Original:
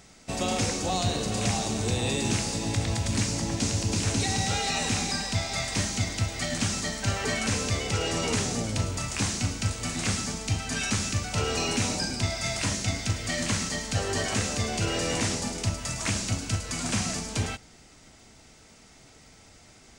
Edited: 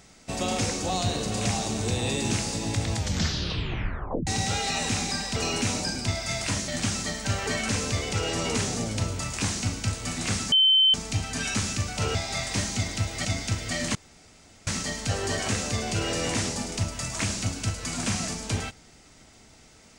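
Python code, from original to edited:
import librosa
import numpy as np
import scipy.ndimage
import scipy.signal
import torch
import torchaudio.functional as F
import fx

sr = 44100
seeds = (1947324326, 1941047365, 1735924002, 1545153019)

y = fx.edit(x, sr, fx.tape_stop(start_s=2.95, length_s=1.32),
    fx.swap(start_s=5.36, length_s=1.1, other_s=11.51, other_length_s=1.32),
    fx.insert_tone(at_s=10.3, length_s=0.42, hz=3080.0, db=-15.5),
    fx.insert_room_tone(at_s=13.53, length_s=0.72), tone=tone)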